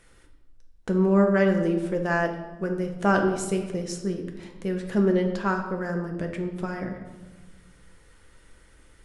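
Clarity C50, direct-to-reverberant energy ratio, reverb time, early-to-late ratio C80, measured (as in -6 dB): 7.0 dB, 3.0 dB, 1.3 s, 9.5 dB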